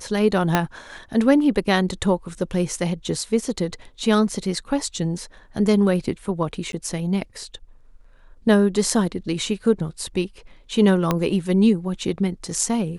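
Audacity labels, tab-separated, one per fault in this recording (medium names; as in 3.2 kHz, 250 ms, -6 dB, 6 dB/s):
0.550000	0.550000	pop -3 dBFS
6.720000	6.730000	dropout 12 ms
11.110000	11.110000	pop -6 dBFS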